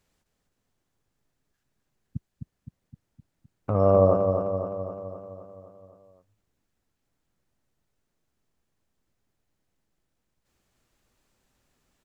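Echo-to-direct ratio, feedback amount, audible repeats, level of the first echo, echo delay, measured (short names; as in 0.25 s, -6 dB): -4.0 dB, 59%, 7, -6.0 dB, 0.258 s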